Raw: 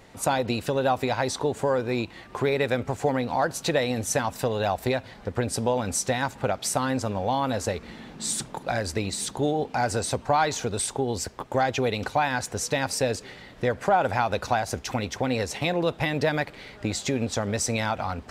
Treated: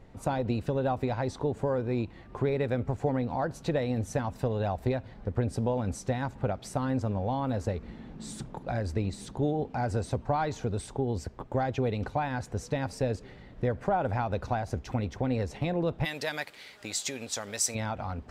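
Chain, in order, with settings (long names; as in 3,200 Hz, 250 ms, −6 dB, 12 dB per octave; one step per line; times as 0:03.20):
spectral tilt −3 dB per octave, from 0:16.04 +3 dB per octave, from 0:17.74 −2 dB per octave
level −8 dB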